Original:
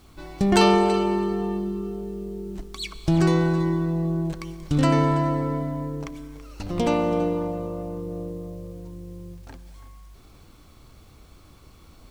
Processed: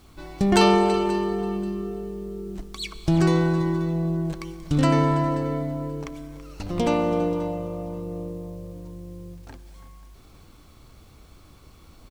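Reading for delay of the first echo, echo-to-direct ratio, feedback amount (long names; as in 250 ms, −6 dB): 533 ms, −18.0 dB, 25%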